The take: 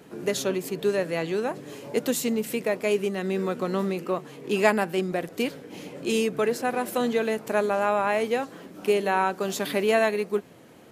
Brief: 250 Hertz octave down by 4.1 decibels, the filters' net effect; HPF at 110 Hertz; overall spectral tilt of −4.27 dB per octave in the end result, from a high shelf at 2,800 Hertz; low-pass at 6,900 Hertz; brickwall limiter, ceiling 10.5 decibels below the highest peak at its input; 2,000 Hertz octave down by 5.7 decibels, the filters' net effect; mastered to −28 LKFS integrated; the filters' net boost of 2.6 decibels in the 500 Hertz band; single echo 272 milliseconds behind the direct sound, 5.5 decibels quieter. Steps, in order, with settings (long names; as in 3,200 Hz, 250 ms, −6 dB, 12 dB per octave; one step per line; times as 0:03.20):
high-pass filter 110 Hz
low-pass filter 6,900 Hz
parametric band 250 Hz −7.5 dB
parametric band 500 Hz +6 dB
parametric band 2,000 Hz −5.5 dB
high-shelf EQ 2,800 Hz −5.5 dB
brickwall limiter −17 dBFS
single-tap delay 272 ms −5.5 dB
level −1.5 dB